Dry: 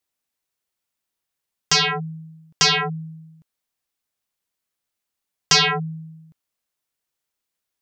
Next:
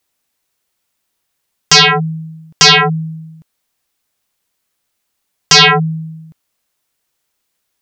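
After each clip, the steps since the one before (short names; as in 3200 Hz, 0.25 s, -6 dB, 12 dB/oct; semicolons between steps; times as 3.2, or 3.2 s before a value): maximiser +13 dB; gain -1 dB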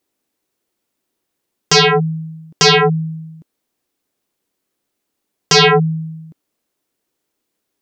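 bell 320 Hz +14 dB 1.7 oct; gain -6 dB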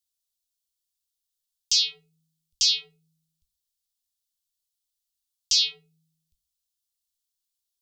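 inverse Chebyshev band-stop 130–1800 Hz, stop band 40 dB; reverb RT60 0.30 s, pre-delay 5 ms, DRR 11 dB; gain -6.5 dB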